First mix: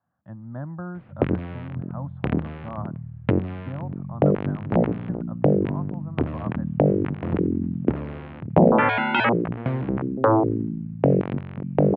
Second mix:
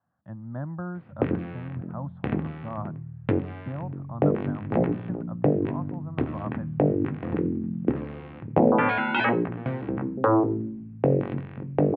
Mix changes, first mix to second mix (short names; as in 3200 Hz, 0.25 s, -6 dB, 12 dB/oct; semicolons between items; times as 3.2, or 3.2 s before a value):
background -6.5 dB; reverb: on, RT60 0.50 s